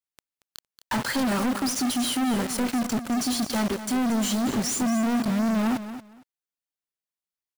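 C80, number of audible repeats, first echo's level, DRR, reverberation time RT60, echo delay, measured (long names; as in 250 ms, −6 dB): no reverb audible, 2, −12.0 dB, no reverb audible, no reverb audible, 230 ms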